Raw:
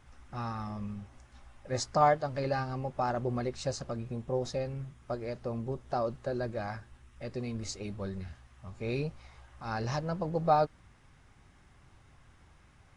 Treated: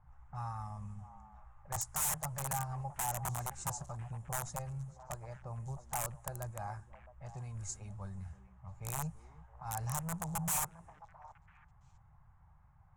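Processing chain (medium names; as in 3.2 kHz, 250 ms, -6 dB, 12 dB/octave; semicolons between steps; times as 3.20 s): integer overflow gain 25 dB; FFT filter 170 Hz 0 dB, 250 Hz -23 dB, 490 Hz -16 dB, 850 Hz +2 dB, 1.5 kHz -7 dB, 2.8 kHz -13 dB, 4.6 kHz -16 dB, 7.1 kHz +6 dB; repeats whose band climbs or falls 333 ms, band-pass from 290 Hz, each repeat 1.4 oct, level -9 dB; level-controlled noise filter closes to 1.3 kHz, open at -36 dBFS; trim -2.5 dB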